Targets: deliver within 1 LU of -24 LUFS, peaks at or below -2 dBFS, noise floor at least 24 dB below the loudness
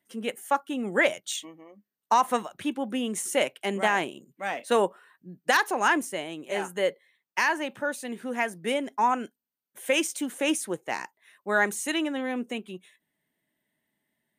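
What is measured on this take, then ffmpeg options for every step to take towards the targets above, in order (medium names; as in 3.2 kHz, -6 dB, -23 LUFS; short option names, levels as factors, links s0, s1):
loudness -27.5 LUFS; peak level -11.0 dBFS; loudness target -24.0 LUFS
-> -af "volume=1.5"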